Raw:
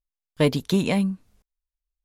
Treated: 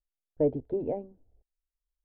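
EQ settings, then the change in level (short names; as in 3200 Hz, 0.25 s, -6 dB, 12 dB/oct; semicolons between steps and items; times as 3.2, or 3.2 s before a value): Chebyshev low-pass 900 Hz, order 3; air absorption 170 m; fixed phaser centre 450 Hz, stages 4; -1.5 dB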